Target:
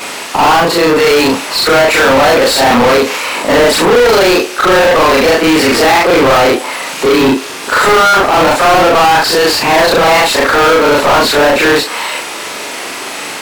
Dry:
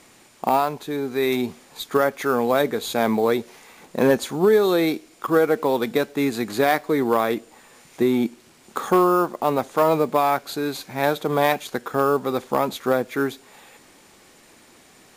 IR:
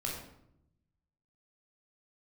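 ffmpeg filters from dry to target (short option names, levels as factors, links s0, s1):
-filter_complex "[0:a]afftfilt=real='re':imag='-im':win_size=4096:overlap=0.75,asplit=2[s0][s1];[s1]highpass=f=720:p=1,volume=70.8,asoftclip=type=tanh:threshold=0.376[s2];[s0][s2]amix=inputs=2:normalize=0,lowpass=f=3800:p=1,volume=0.501,asetrate=49833,aresample=44100,volume=2.37"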